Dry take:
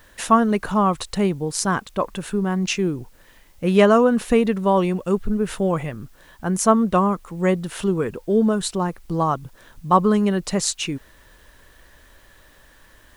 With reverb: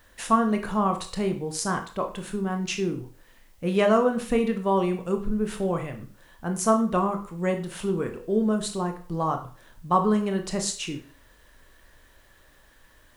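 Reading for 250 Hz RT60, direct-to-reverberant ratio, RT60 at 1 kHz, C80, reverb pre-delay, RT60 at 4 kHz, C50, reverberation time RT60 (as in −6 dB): 0.40 s, 5.0 dB, 0.45 s, 15.5 dB, 19 ms, 0.40 s, 11.0 dB, 0.45 s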